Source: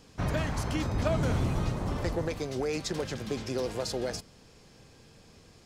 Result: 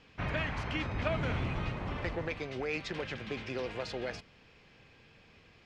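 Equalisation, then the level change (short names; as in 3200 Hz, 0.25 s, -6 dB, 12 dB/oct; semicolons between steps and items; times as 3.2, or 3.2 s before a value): synth low-pass 2500 Hz, resonance Q 2; tilt +2 dB/oct; low shelf 130 Hz +7.5 dB; -4.0 dB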